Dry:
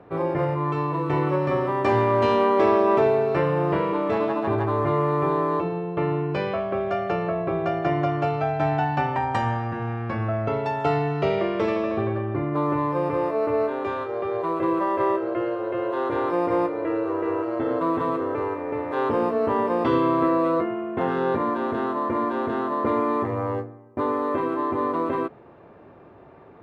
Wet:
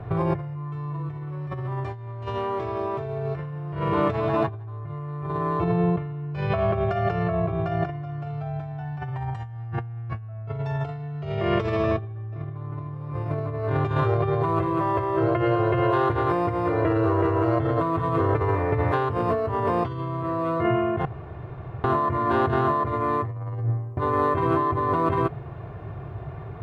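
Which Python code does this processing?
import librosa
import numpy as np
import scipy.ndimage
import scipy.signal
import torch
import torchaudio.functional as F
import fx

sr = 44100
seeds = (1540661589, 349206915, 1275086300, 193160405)

y = fx.echo_throw(x, sr, start_s=11.87, length_s=0.81, ms=450, feedback_pct=60, wet_db=-2.0)
y = fx.edit(y, sr, fx.room_tone_fill(start_s=21.05, length_s=0.79), tone=tone)
y = fx.low_shelf_res(y, sr, hz=190.0, db=11.5, q=3.0)
y = y + 0.45 * np.pad(y, (int(2.8 * sr / 1000.0), 0))[:len(y)]
y = fx.over_compress(y, sr, threshold_db=-27.0, ratio=-1.0)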